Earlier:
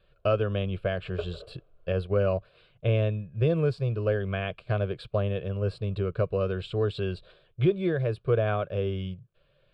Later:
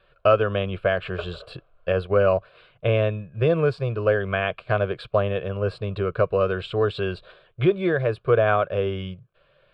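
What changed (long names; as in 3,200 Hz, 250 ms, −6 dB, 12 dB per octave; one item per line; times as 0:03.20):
background: add parametric band 280 Hz −13 dB 1.5 octaves
master: add parametric band 1,200 Hz +11 dB 2.9 octaves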